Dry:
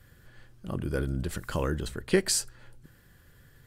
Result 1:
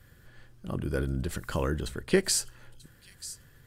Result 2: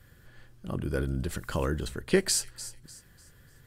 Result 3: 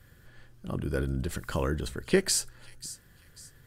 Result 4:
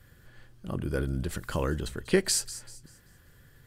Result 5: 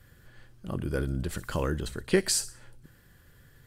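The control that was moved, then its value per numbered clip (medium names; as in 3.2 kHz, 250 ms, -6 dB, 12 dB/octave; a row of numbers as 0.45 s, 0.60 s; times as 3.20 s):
feedback echo behind a high-pass, time: 938 ms, 298 ms, 541 ms, 194 ms, 61 ms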